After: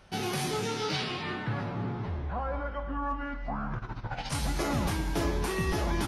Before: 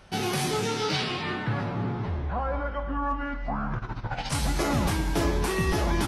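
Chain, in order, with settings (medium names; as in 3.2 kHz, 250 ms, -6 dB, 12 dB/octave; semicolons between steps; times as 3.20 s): band-stop 7.8 kHz, Q 18; trim -4 dB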